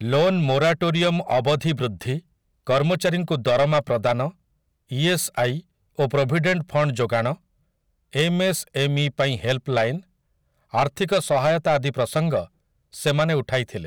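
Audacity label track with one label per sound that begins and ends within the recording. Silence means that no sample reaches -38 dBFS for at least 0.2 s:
2.670000	4.300000	sound
4.910000	5.600000	sound
5.980000	7.350000	sound
8.130000	10.000000	sound
10.730000	12.450000	sound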